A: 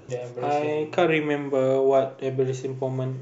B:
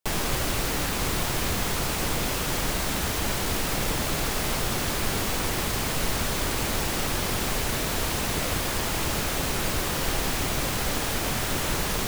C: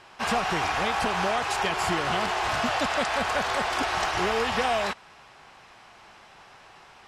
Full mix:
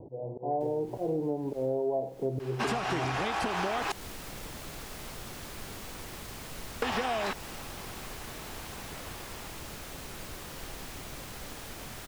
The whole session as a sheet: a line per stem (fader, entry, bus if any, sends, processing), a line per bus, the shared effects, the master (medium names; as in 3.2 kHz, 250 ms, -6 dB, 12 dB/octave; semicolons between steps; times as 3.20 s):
+1.5 dB, 0.00 s, no send, steep low-pass 960 Hz 96 dB/octave; slow attack 241 ms
-15.5 dB, 0.55 s, no send, auto duck -15 dB, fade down 0.75 s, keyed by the first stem
+0.5 dB, 2.40 s, muted 3.92–6.82 s, no send, peaking EQ 310 Hz +8 dB 0.77 oct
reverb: none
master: compression 10:1, threshold -27 dBFS, peak gain reduction 13.5 dB